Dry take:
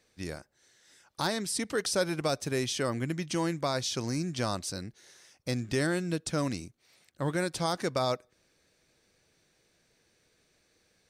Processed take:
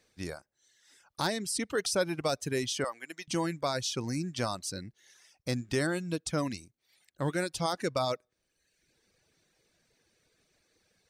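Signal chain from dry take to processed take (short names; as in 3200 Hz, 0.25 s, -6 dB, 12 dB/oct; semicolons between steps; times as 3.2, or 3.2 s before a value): 2.84–3.28 HPF 580 Hz 12 dB/oct; reverb removal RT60 0.95 s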